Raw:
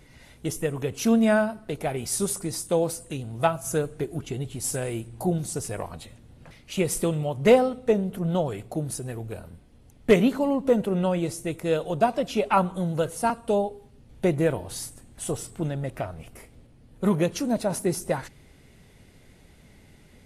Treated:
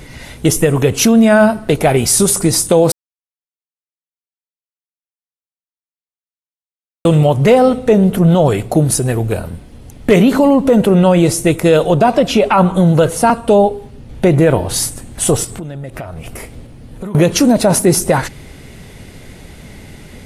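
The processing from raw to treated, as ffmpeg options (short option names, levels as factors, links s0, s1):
-filter_complex "[0:a]asettb=1/sr,asplit=3[s0][s1][s2];[s0]atrim=end=11.864[s3];[s1]atrim=start=11.86:end=14.74,asetpts=PTS-STARTPTS,afade=t=in:d=0.004:c=qsin,afade=t=out:st=2.876:d=0.004:c=qsin,equalizer=f=12000:t=o:w=1.9:g=-4.5[s4];[s2]atrim=start=14.736[s5];[s3][s4]acrossfade=d=0.004:c1=hsin:c2=qsin[s6];[s6][s5]acrossfade=d=0.004:c1=qsin:c2=hsin,asettb=1/sr,asplit=3[s7][s8][s9];[s7]atrim=end=15.444[s10];[s8]atrim=start=15.44:end=17.15,asetpts=PTS-STARTPTS,afade=t=in:d=0.004:c=qsin,afade=t=out:st=1.706:d=0.004:c=qsin,acompressor=threshold=0.00891:ratio=8:attack=3.2:release=140:knee=1:detection=peak[s11];[s9]atrim=start=17.146[s12];[s10][s11]acrossfade=d=0.004:c1=hsin:c2=qsin[s13];[s13][s12]acrossfade=d=0.004:c1=qsin:c2=hsin,asplit=3[s14][s15][s16];[s14]atrim=end=2.92,asetpts=PTS-STARTPTS,afade=t=out:st=2.916:d=0.004:c=hsin[s17];[s15]atrim=start=2.92:end=7.05,asetpts=PTS-STARTPTS,volume=0[s18];[s16]atrim=start=7.05,asetpts=PTS-STARTPTS,afade=t=in:d=0.004:c=hsin[s19];[s17][s18][s19]concat=n=3:v=0:a=1,alimiter=level_in=8.91:limit=0.891:release=50:level=0:latency=1,volume=0.891"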